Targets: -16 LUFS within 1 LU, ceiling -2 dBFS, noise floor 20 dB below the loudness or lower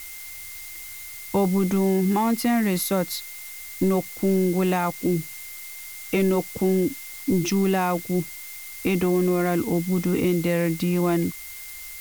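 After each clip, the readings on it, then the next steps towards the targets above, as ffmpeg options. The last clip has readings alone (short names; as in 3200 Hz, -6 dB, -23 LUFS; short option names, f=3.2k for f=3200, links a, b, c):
steady tone 2100 Hz; tone level -43 dBFS; noise floor -38 dBFS; noise floor target -44 dBFS; loudness -23.5 LUFS; peak -12.0 dBFS; loudness target -16.0 LUFS
-> -af "bandreject=f=2.1k:w=30"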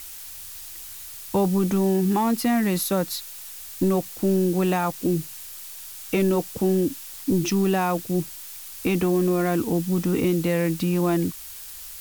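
steady tone none; noise floor -39 dBFS; noise floor target -44 dBFS
-> -af "afftdn=nr=6:nf=-39"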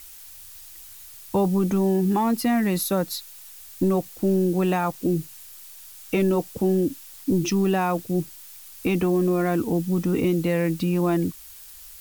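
noise floor -44 dBFS; loudness -23.5 LUFS; peak -12.5 dBFS; loudness target -16.0 LUFS
-> -af "volume=7.5dB"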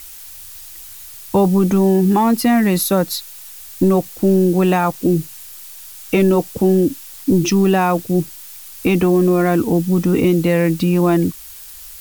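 loudness -16.0 LUFS; peak -5.0 dBFS; noise floor -37 dBFS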